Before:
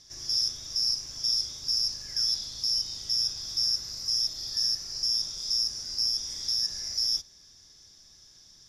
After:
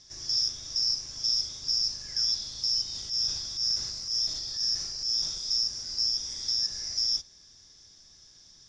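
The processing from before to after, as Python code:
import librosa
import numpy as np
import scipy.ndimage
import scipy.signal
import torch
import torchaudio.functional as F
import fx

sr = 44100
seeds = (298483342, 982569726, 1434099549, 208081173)

y = scipy.signal.sosfilt(scipy.signal.butter(4, 8100.0, 'lowpass', fs=sr, output='sos'), x)
y = fx.transient(y, sr, attack_db=-8, sustain_db=5, at=(2.93, 5.38), fade=0.02)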